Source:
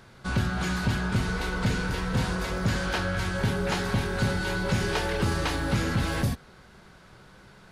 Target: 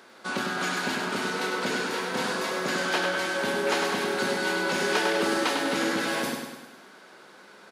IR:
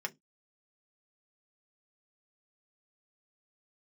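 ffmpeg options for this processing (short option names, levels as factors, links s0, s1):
-filter_complex "[0:a]highpass=f=260:w=0.5412,highpass=f=260:w=1.3066,asplit=2[s0][s1];[s1]aecho=0:1:100|200|300|400|500|600|700:0.562|0.304|0.164|0.0885|0.0478|0.0258|0.0139[s2];[s0][s2]amix=inputs=2:normalize=0,volume=1.33"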